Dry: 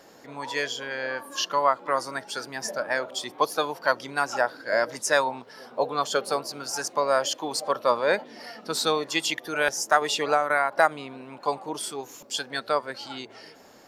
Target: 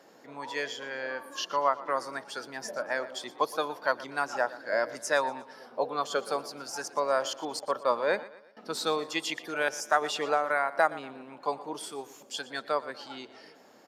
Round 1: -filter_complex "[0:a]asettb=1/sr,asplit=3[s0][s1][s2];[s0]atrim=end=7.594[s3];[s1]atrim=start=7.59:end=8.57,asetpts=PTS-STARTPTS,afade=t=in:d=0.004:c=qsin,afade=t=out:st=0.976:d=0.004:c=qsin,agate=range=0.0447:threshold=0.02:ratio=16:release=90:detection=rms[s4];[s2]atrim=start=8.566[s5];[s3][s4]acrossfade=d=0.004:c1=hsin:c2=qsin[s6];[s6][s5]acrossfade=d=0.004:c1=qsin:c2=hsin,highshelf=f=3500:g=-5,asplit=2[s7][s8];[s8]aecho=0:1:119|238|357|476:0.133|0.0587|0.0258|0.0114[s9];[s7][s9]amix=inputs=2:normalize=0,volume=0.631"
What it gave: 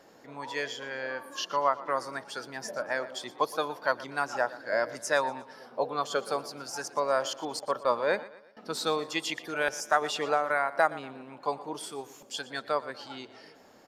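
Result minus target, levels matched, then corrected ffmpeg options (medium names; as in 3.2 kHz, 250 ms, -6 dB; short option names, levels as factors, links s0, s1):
125 Hz band +4.0 dB
-filter_complex "[0:a]asettb=1/sr,asplit=3[s0][s1][s2];[s0]atrim=end=7.594[s3];[s1]atrim=start=7.59:end=8.57,asetpts=PTS-STARTPTS,afade=t=in:d=0.004:c=qsin,afade=t=out:st=0.976:d=0.004:c=qsin,agate=range=0.0447:threshold=0.02:ratio=16:release=90:detection=rms[s4];[s2]atrim=start=8.566[s5];[s3][s4]acrossfade=d=0.004:c1=hsin:c2=qsin[s6];[s6][s5]acrossfade=d=0.004:c1=qsin:c2=hsin,highpass=160,highshelf=f=3500:g=-5,asplit=2[s7][s8];[s8]aecho=0:1:119|238|357|476:0.133|0.0587|0.0258|0.0114[s9];[s7][s9]amix=inputs=2:normalize=0,volume=0.631"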